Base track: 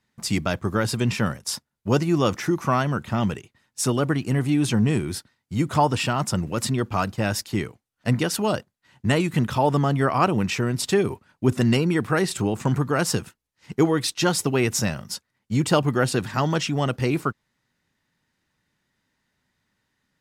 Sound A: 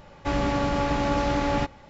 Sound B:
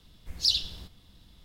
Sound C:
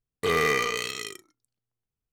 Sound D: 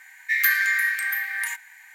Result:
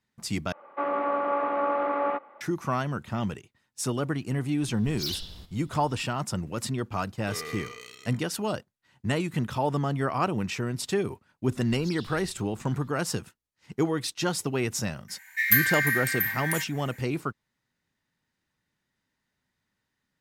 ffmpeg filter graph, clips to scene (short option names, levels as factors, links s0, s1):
-filter_complex "[2:a]asplit=2[s0][s1];[0:a]volume=0.473[s2];[1:a]highpass=f=320:w=0.5412,highpass=f=320:w=1.3066,equalizer=f=400:t=q:w=4:g=-3,equalizer=f=580:t=q:w=4:g=4,equalizer=f=1200:t=q:w=4:g=10,equalizer=f=1700:t=q:w=4:g=-4,lowpass=f=2100:w=0.5412,lowpass=f=2100:w=1.3066[s3];[s0]volume=26.6,asoftclip=hard,volume=0.0376[s4];[s1]acompressor=threshold=0.0158:ratio=6:attack=3.2:release=140:knee=1:detection=peak[s5];[4:a]highshelf=f=10000:g=10.5[s6];[s2]asplit=2[s7][s8];[s7]atrim=end=0.524[s9];[s3]atrim=end=1.89,asetpts=PTS-STARTPTS,volume=0.708[s10];[s8]atrim=start=2.406[s11];[s4]atrim=end=1.44,asetpts=PTS-STARTPTS,volume=0.891,afade=t=in:d=0.004:c=hsin,afade=t=out:st=1.436:d=0.004:c=hsin,adelay=4580[s12];[3:a]atrim=end=2.12,asetpts=PTS-STARTPTS,volume=0.178,afade=t=in:d=0.004:c=hsin,afade=t=out:st=2.116:d=0.004:c=hsin,adelay=7040[s13];[s5]atrim=end=1.44,asetpts=PTS-STARTPTS,volume=0.596,afade=t=in:d=0.004:c=hsin,afade=t=out:st=1.436:d=0.004:c=hsin,adelay=11440[s14];[s6]atrim=end=1.94,asetpts=PTS-STARTPTS,volume=0.631,afade=t=in:d=0.004:c=hsin,afade=t=out:st=1.936:d=0.004:c=hsin,adelay=665028S[s15];[s9][s10]acrossfade=d=0.004:c1=hsin:c2=hsin[s16];[s16][s11]acrossfade=d=0.004:c1=hsin:c2=hsin[s17];[s17][s12][s13][s14][s15]amix=inputs=5:normalize=0"